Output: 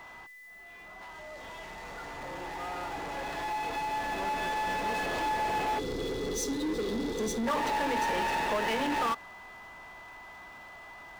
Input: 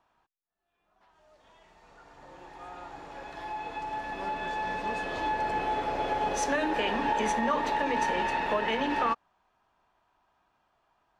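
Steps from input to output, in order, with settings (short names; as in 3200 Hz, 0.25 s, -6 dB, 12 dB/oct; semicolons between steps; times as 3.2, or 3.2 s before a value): spectral gain 5.79–7.47, 530–3300 Hz -28 dB; power-law curve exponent 0.5; whine 2000 Hz -42 dBFS; gain -6 dB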